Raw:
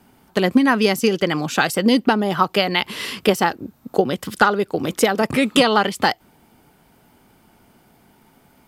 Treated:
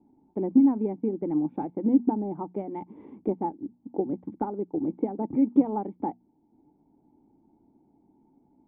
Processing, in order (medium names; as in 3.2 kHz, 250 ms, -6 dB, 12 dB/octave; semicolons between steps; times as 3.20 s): hum notches 60/120/180/240 Hz; transient shaper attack -1 dB, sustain -5 dB; short-mantissa float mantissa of 2-bit; cascade formant filter u; trim +1.5 dB